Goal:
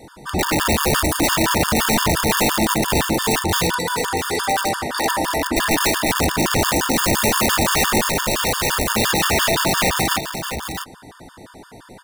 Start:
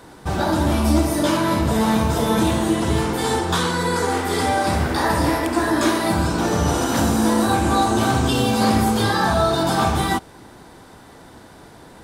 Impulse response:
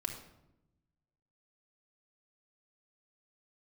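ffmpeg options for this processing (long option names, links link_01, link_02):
-filter_complex "[0:a]asettb=1/sr,asplit=3[link_01][link_02][link_03];[link_01]atrim=end=3.764[link_04];[link_02]atrim=start=3.76:end=5.36,asetpts=PTS-STARTPTS,afade=type=in:duration=0.004:curve=qsin,afade=type=out:start_time=1.596:duration=0.004:curve=qsin,highpass=frequency=520:poles=1[link_05];[link_03]atrim=start=5.356[link_06];[link_04][link_05]acrossfade=duration=0.004:curve1=hsin:curve2=qsin[link_07];[link_07][link_06]acrossfade=duration=0.004:curve1=qsin:curve2=hsin,aeval=exprs='(mod(4.73*val(0)+1,2)-1)/4.73':channel_layout=same,asettb=1/sr,asplit=3[link_08][link_09][link_10];[link_08]atrim=end=8.014[link_11];[link_09]atrim=start=8.01:end=8.92,asetpts=PTS-STARTPTS,afade=type=in:duration=0.004:curve=qsin,afade=type=out:start_time=0.906:duration=0.004:curve=qsin,aeval=exprs='val(0)*sin(2*PI*280*n/s)':channel_layout=same[link_12];[link_10]atrim=start=8.916[link_13];[link_11][link_12]acrossfade=duration=0.004:curve1=hsin:curve2=qsin[link_14];[link_14][link_13]acrossfade=duration=0.004:curve1=qsin:curve2=hsin,asplit=2[link_15][link_16];[link_16]aecho=0:1:659:0.376[link_17];[link_15][link_17]amix=inputs=2:normalize=0,afftfilt=real='re*gt(sin(2*PI*5.8*pts/sr)*(1-2*mod(floor(b*sr/1024/910),2)),0)':imag='im*gt(sin(2*PI*5.8*pts/sr)*(1-2*mod(floor(b*sr/1024/910),2)),0)':win_size=1024:overlap=0.75,volume=4dB"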